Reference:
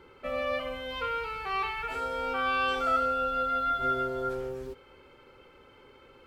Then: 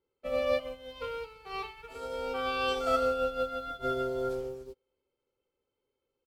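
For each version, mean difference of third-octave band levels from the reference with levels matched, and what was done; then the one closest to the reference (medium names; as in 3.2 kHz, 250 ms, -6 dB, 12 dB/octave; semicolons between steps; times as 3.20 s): 6.0 dB: FFT filter 280 Hz 0 dB, 470 Hz +4 dB, 1.6 kHz -8 dB, 4.6 kHz +4 dB; speakerphone echo 360 ms, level -22 dB; upward expansion 2.5:1, over -50 dBFS; trim +4 dB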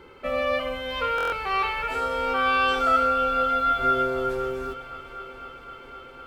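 2.0 dB: peaking EQ 120 Hz -4 dB 0.3 oct; multi-head delay 256 ms, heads second and third, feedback 69%, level -18.5 dB; buffer glitch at 1.16 s, samples 1024, times 6; trim +6 dB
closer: second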